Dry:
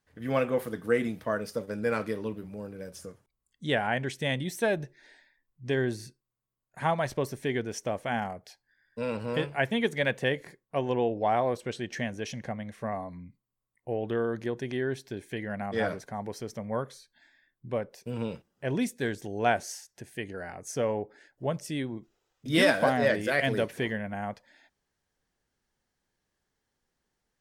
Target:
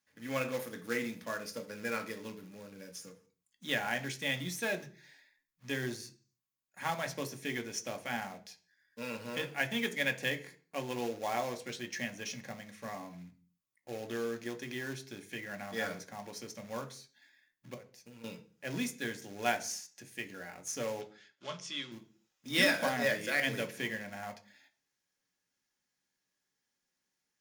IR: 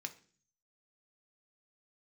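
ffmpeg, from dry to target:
-filter_complex "[0:a]highshelf=frequency=2100:gain=9,asettb=1/sr,asplit=3[link_01][link_02][link_03];[link_01]atrim=end=17.744[link_04];[link_02]atrim=start=17.74:end=18.24,asetpts=PTS-STARTPTS,afade=type=in:duration=0.004:curve=qsin,afade=type=out:start_time=0.496:duration=0.004:curve=qsin,acompressor=threshold=-42dB:ratio=6[link_05];[link_03]atrim=start=18.236[link_06];[link_04][link_05]acrossfade=duration=0.004:curve1=hsin:curve2=qsin[link_07];[link_07][link_06]acrossfade=duration=0.004:curve1=qsin:curve2=hsin,acrusher=bits=3:mode=log:mix=0:aa=0.000001,asettb=1/sr,asplit=3[link_08][link_09][link_10];[link_08]atrim=end=21.014[link_11];[link_09]atrim=start=21.01:end=21.92,asetpts=PTS-STARTPTS,afade=type=in:duration=0.004:curve=qsin,afade=type=out:start_time=0.906:duration=0.004:curve=qsin,highpass=210,equalizer=frequency=270:width_type=q:width=4:gain=-9,equalizer=frequency=480:width_type=q:width=4:gain=-8,equalizer=frequency=760:width_type=q:width=4:gain=-8,equalizer=frequency=1200:width_type=q:width=4:gain=6,equalizer=frequency=1800:width_type=q:width=4:gain=-3,equalizer=frequency=3300:width_type=q:width=4:gain=8,lowpass=frequency=6800:width=0.5412,lowpass=frequency=6800:width=1.3066[link_12];[link_10]atrim=start=21.916[link_13];[link_11][link_12]acrossfade=duration=0.004:curve1=hsin:curve2=qsin[link_14];[link_14][link_13]acrossfade=duration=0.004:curve1=qsin:curve2=hsin[link_15];[1:a]atrim=start_sample=2205,afade=type=out:start_time=0.36:duration=0.01,atrim=end_sample=16317[link_16];[link_15][link_16]afir=irnorm=-1:irlink=0,volume=-5.5dB"

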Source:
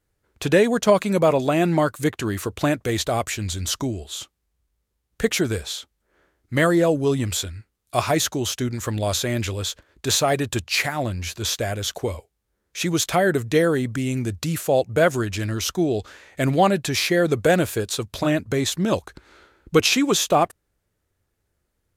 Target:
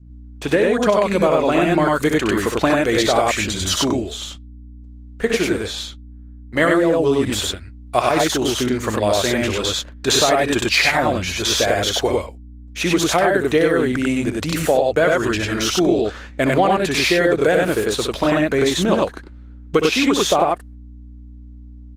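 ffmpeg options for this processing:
ffmpeg -i in.wav -filter_complex "[0:a]equalizer=frequency=100:width=0.69:gain=-12.5,asplit=3[link_01][link_02][link_03];[link_01]afade=type=out:start_time=3.99:duration=0.02[link_04];[link_02]flanger=delay=9.7:depth=3.2:regen=66:speed=1.8:shape=triangular,afade=type=in:start_time=3.99:duration=0.02,afade=type=out:start_time=6.6:duration=0.02[link_05];[link_03]afade=type=in:start_time=6.6:duration=0.02[link_06];[link_04][link_05][link_06]amix=inputs=3:normalize=0,lowpass=frequency=3400:poles=1,dynaudnorm=framelen=180:gausssize=11:maxgain=4dB,agate=range=-19dB:threshold=-42dB:ratio=16:detection=peak,aeval=exprs='val(0)+0.00501*(sin(2*PI*60*n/s)+sin(2*PI*2*60*n/s)/2+sin(2*PI*3*60*n/s)/3+sin(2*PI*4*60*n/s)/4+sin(2*PI*5*60*n/s)/5)':channel_layout=same,adynamicequalizer=threshold=0.0282:dfrequency=650:dqfactor=1.6:tfrequency=650:tqfactor=1.6:attack=5:release=100:ratio=0.375:range=2:mode=cutabove:tftype=bell,aecho=1:1:64.14|96.21:0.447|0.891,acompressor=threshold=-16dB:ratio=16,volume=5dB" -ar 48000 -c:a libopus -b:a 24k out.opus

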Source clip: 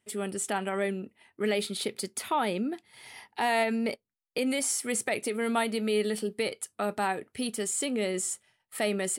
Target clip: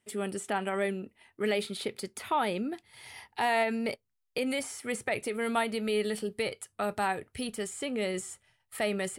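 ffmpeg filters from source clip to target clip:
ffmpeg -i in.wav -filter_complex "[0:a]asubboost=boost=6.5:cutoff=90,acrossover=split=3100[link_01][link_02];[link_02]acompressor=threshold=-41dB:ratio=6[link_03];[link_01][link_03]amix=inputs=2:normalize=0" out.wav

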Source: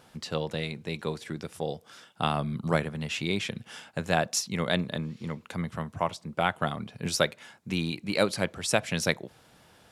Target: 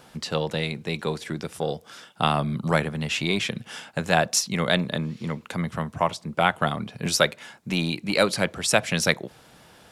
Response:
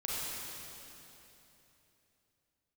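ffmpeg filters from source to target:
-filter_complex "[0:a]equalizer=frequency=95:width_type=o:width=0.24:gain=-7.5,acrossover=split=610|4400[link_01][link_02][link_03];[link_01]asoftclip=type=tanh:threshold=-24.5dB[link_04];[link_04][link_02][link_03]amix=inputs=3:normalize=0,volume=6dB"

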